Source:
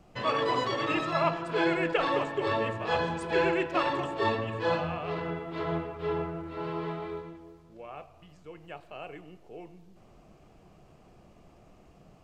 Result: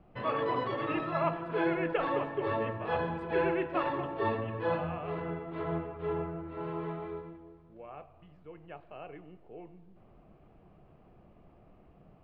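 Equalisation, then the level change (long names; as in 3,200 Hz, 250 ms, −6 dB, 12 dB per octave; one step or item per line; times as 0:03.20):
high-frequency loss of the air 450 metres
−1.5 dB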